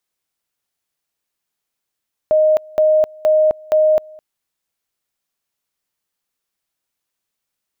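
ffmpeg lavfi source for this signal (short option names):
-f lavfi -i "aevalsrc='pow(10,(-9.5-26*gte(mod(t,0.47),0.26))/20)*sin(2*PI*620*t)':d=1.88:s=44100"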